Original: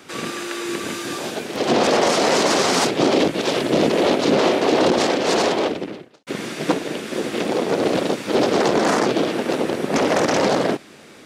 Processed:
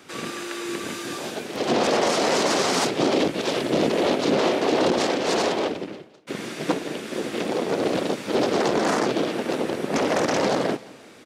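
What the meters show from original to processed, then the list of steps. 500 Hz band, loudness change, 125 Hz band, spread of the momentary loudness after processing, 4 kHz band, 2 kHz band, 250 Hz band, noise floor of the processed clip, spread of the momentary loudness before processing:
−4.0 dB, −4.0 dB, −4.0 dB, 10 LU, −4.0 dB, −4.0 dB, −4.0 dB, −46 dBFS, 10 LU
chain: repeating echo 173 ms, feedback 48%, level −21.5 dB
level −4 dB

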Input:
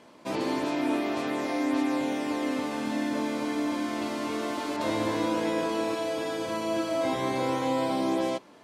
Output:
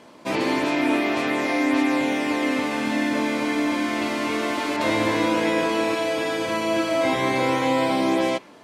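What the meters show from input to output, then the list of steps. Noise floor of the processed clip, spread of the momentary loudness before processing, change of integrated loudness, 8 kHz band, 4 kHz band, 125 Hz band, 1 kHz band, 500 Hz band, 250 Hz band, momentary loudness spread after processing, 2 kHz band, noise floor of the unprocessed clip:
−47 dBFS, 4 LU, +6.5 dB, +6.0 dB, +8.0 dB, +5.5 dB, +6.5 dB, +5.5 dB, +5.5 dB, 3 LU, +11.0 dB, −53 dBFS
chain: dynamic equaliser 2,200 Hz, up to +7 dB, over −51 dBFS, Q 1.5
level +5.5 dB

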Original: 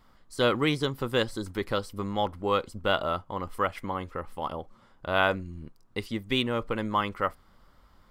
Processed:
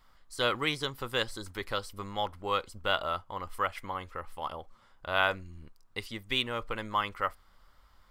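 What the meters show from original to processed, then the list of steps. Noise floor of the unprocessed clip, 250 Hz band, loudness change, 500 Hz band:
−60 dBFS, −10.5 dB, −3.5 dB, −6.5 dB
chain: parametric band 220 Hz −11 dB 2.9 octaves

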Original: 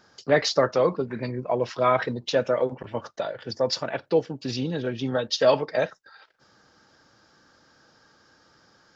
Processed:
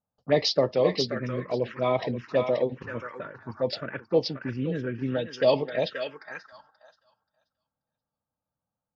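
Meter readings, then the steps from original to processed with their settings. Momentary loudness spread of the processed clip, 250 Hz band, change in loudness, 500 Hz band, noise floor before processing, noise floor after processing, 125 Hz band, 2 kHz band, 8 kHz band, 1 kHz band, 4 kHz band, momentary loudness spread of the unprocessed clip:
13 LU, −1.0 dB, −2.0 dB, −2.0 dB, −61 dBFS, below −85 dBFS, 0.0 dB, −4.0 dB, can't be measured, −6.0 dB, −1.5 dB, 11 LU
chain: noise gate with hold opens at −47 dBFS
low-pass that shuts in the quiet parts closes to 590 Hz, open at −17 dBFS
dynamic equaliser 5,100 Hz, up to +6 dB, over −51 dBFS, Q 6
feedback echo with a high-pass in the loop 531 ms, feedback 17%, high-pass 890 Hz, level −3.5 dB
phaser swept by the level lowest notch 370 Hz, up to 1,500 Hz, full sweep at −18.5 dBFS

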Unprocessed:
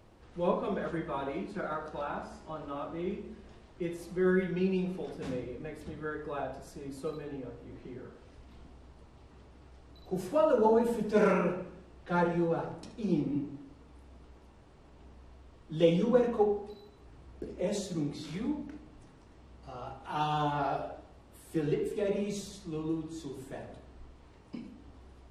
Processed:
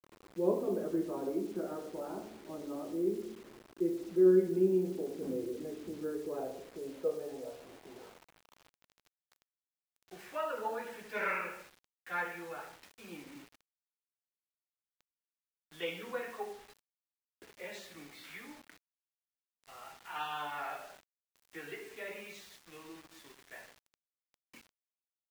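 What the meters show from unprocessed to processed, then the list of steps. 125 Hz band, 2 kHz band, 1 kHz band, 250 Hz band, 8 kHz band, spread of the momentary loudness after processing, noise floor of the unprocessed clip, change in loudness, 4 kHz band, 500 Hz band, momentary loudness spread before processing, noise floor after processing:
−11.5 dB, −0.5 dB, −7.5 dB, −4.0 dB, −4.5 dB, 20 LU, −56 dBFS, −3.5 dB, −3.5 dB, −4.0 dB, 20 LU, below −85 dBFS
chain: band-pass filter sweep 350 Hz → 2,000 Hz, 0:06.22–0:10.00
bit-depth reduction 10 bits, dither none
level +5 dB

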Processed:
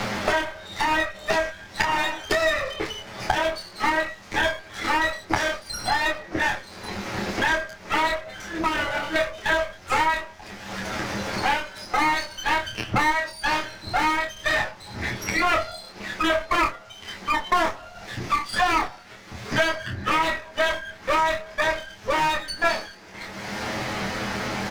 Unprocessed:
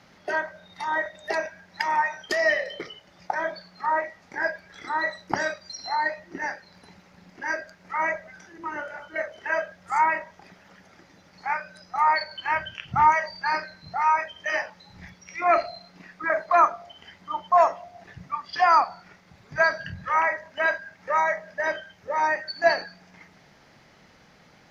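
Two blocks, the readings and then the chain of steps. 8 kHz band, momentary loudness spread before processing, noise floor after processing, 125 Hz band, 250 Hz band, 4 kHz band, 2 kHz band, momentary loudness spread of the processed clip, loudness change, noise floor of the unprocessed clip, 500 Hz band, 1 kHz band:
can't be measured, 15 LU, −45 dBFS, +10.5 dB, +11.0 dB, +10.0 dB, +3.0 dB, 11 LU, +1.0 dB, −56 dBFS, +1.0 dB, −0.5 dB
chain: lower of the sound and its delayed copy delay 9.4 ms
double-tracking delay 25 ms −4 dB
multiband upward and downward compressor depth 100%
level +2.5 dB

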